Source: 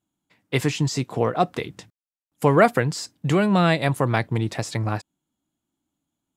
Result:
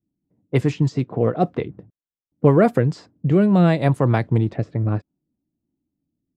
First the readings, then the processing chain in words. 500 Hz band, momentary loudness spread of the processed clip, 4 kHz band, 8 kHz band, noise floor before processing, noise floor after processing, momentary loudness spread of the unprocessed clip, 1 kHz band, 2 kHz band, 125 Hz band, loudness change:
+2.0 dB, 9 LU, −9.0 dB, below −10 dB, below −85 dBFS, below −85 dBFS, 11 LU, −2.5 dB, −5.5 dB, +5.0 dB, +2.5 dB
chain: rotating-speaker cabinet horn 6.7 Hz, later 0.6 Hz, at 0:02.34
low-pass that shuts in the quiet parts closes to 430 Hz, open at −18.5 dBFS
tilt shelving filter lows +6.5 dB, about 1,200 Hz

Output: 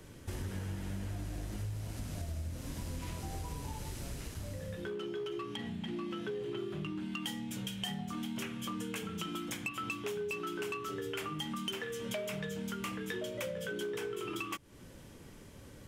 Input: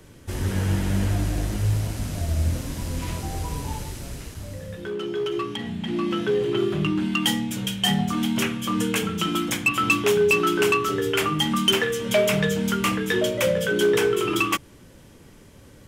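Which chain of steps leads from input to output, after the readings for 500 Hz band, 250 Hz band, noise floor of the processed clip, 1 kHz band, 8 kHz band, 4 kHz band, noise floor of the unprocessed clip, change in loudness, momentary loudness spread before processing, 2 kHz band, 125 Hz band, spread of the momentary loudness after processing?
−16.5 dB, −15.0 dB, −53 dBFS, −16.0 dB, −15.0 dB, −16.5 dB, −49 dBFS, −16.0 dB, 11 LU, −17.0 dB, −14.5 dB, 5 LU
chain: downward compressor 6 to 1, threshold −33 dBFS, peak gain reduction 16.5 dB
level −4 dB

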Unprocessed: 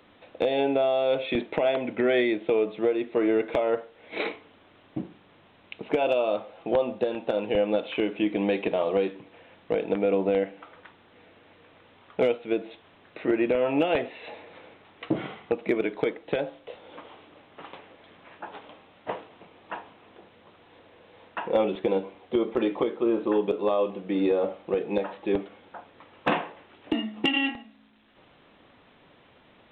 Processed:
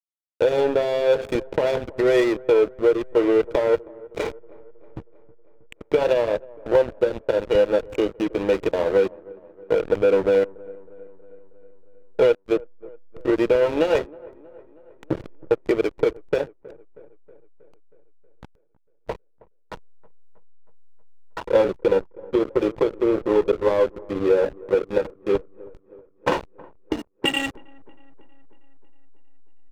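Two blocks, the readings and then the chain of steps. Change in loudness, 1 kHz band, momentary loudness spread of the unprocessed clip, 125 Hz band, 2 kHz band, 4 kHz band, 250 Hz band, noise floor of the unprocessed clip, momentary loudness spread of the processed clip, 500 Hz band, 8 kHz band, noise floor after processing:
+5.0 dB, +1.5 dB, 19 LU, +4.0 dB, +2.0 dB, +1.5 dB, +1.5 dB, −58 dBFS, 12 LU, +5.5 dB, can't be measured, −58 dBFS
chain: high-shelf EQ 2,000 Hz −2.5 dB
comb filter 2.1 ms, depth 66%
slack as between gear wheels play −22.5 dBFS
on a send: delay with a low-pass on its return 318 ms, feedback 60%, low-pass 1,300 Hz, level −22.5 dB
on the sum: level +4 dB

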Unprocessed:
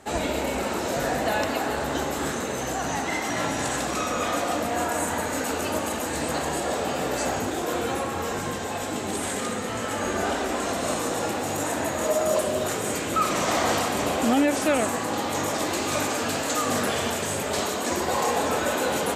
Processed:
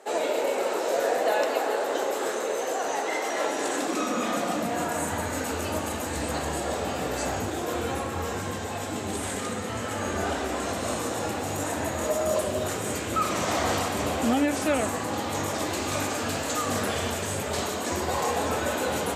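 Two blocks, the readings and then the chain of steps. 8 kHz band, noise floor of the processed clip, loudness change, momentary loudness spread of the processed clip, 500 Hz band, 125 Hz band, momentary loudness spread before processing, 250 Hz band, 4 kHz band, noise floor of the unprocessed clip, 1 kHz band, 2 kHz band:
−3.0 dB, −32 dBFS, −2.0 dB, 5 LU, −1.0 dB, +0.5 dB, 5 LU, −2.5 dB, −3.0 dB, −30 dBFS, −2.0 dB, −2.5 dB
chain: high-pass filter sweep 460 Hz → 72 Hz, 0:03.42–0:05.44
flanger 0.91 Hz, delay 8.5 ms, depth 2.6 ms, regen −73%
level +1.5 dB

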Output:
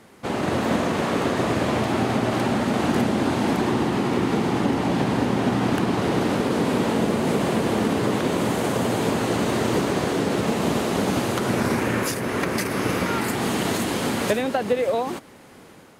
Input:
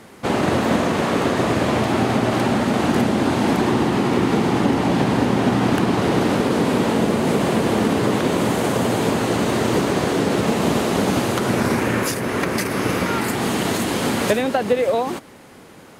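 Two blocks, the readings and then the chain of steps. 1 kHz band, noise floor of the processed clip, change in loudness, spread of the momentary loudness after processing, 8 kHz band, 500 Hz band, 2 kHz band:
−3.5 dB, −47 dBFS, −3.5 dB, 2 LU, −3.0 dB, −3.5 dB, −3.5 dB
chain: automatic gain control gain up to 4.5 dB
level −6.5 dB

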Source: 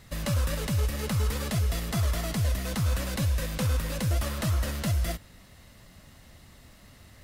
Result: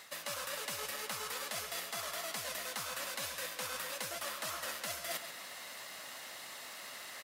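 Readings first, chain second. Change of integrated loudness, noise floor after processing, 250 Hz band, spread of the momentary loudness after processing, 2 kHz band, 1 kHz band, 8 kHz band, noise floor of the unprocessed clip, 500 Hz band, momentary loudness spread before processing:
−10.5 dB, −48 dBFS, −22.5 dB, 7 LU, −2.5 dB, −3.0 dB, −2.0 dB, −54 dBFS, −8.5 dB, 0 LU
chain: high-pass filter 700 Hz 12 dB per octave
reversed playback
downward compressor 10 to 1, threshold −48 dBFS, peak gain reduction 18 dB
reversed playback
slap from a distant wall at 23 metres, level −10 dB
level +10.5 dB

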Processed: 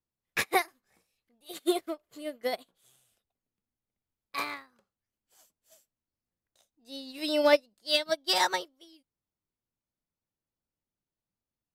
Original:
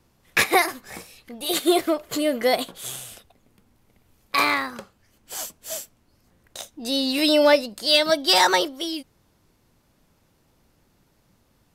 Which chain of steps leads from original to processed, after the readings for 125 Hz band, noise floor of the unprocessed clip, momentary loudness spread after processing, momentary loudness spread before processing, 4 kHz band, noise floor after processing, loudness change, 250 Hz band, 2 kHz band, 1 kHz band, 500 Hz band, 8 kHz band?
can't be measured, −64 dBFS, 18 LU, 19 LU, −10.5 dB, below −85 dBFS, −8.0 dB, −11.5 dB, −10.0 dB, −9.0 dB, −8.5 dB, −12.0 dB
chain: expander for the loud parts 2.5 to 1, over −31 dBFS
level −3.5 dB

